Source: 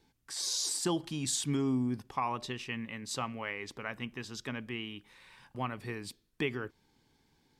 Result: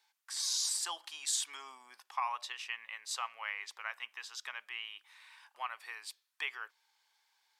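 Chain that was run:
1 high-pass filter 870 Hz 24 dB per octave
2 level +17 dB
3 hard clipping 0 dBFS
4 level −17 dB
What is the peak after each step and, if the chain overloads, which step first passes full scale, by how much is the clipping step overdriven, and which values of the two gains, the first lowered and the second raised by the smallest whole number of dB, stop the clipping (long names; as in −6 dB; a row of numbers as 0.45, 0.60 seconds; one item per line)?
−21.5, −4.5, −4.5, −21.5 dBFS
no step passes full scale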